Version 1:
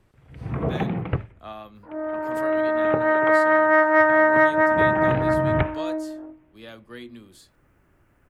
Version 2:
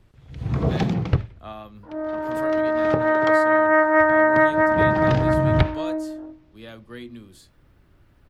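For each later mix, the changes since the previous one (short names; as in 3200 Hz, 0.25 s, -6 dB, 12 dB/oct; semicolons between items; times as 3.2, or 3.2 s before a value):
first sound: remove inverse Chebyshev low-pass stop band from 5200 Hz, stop band 40 dB; second sound: add bell 4000 Hz -12.5 dB 0.67 oct; master: add low shelf 170 Hz +8 dB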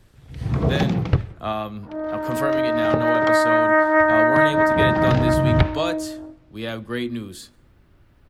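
speech +11.0 dB; reverb: on, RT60 1.3 s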